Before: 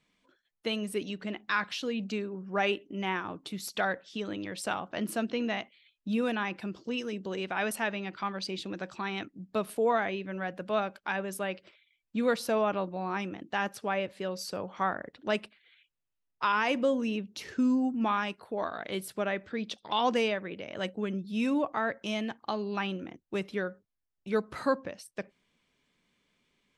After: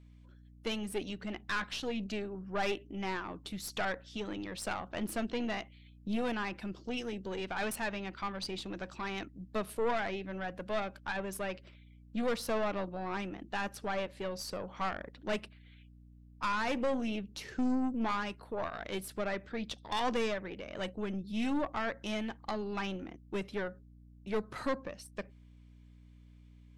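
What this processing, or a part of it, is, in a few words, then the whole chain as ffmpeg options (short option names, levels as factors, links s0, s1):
valve amplifier with mains hum: -af "aeval=exprs='(tanh(22.4*val(0)+0.55)-tanh(0.55))/22.4':c=same,aeval=exprs='val(0)+0.00178*(sin(2*PI*60*n/s)+sin(2*PI*2*60*n/s)/2+sin(2*PI*3*60*n/s)/3+sin(2*PI*4*60*n/s)/4+sin(2*PI*5*60*n/s)/5)':c=same"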